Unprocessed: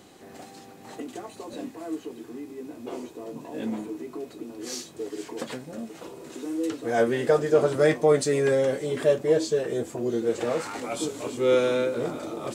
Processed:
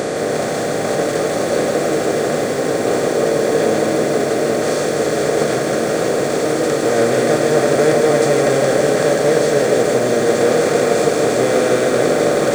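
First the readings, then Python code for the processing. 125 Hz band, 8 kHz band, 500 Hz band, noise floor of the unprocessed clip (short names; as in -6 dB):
+11.5 dB, +15.5 dB, +11.5 dB, -47 dBFS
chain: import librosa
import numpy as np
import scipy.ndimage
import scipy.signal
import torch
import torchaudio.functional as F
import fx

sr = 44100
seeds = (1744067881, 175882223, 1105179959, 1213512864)

y = fx.bin_compress(x, sr, power=0.2)
y = fx.low_shelf(y, sr, hz=170.0, db=6.0)
y = fx.echo_crushed(y, sr, ms=162, feedback_pct=80, bits=6, wet_db=-5.5)
y = y * 10.0 ** (-2.0 / 20.0)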